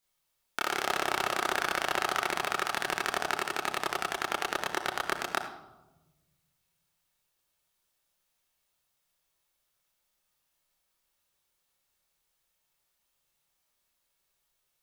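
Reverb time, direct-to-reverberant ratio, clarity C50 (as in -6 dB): 1.1 s, -3.5 dB, 7.5 dB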